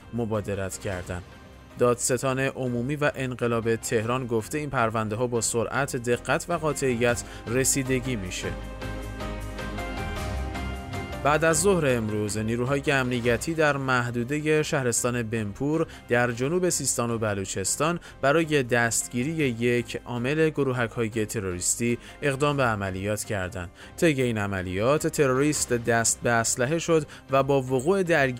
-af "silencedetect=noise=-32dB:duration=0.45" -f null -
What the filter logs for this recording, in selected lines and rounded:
silence_start: 1.20
silence_end: 1.78 | silence_duration: 0.58